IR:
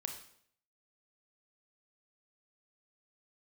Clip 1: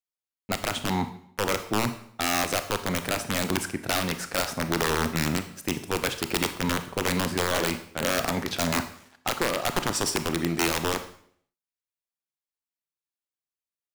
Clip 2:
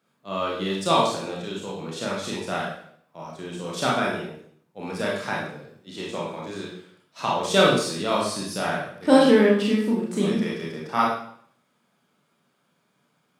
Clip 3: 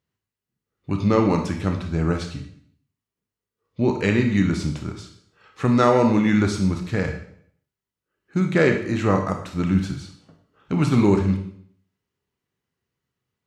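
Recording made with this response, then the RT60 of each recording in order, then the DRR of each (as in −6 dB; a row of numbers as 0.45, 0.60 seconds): 3; 0.65, 0.65, 0.65 seconds; 9.0, −4.5, 4.0 decibels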